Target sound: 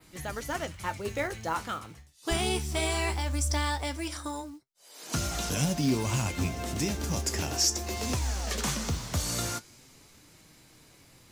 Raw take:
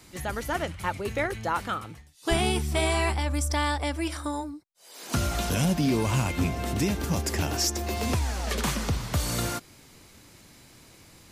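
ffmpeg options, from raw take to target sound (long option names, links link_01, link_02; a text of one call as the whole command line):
ffmpeg -i in.wav -af "acrusher=bits=6:mode=log:mix=0:aa=0.000001,flanger=delay=6.3:depth=9.8:regen=65:speed=0.19:shape=sinusoidal,adynamicequalizer=threshold=0.00224:dfrequency=6300:dqfactor=1.2:tfrequency=6300:tqfactor=1.2:attack=5:release=100:ratio=0.375:range=3.5:mode=boostabove:tftype=bell" out.wav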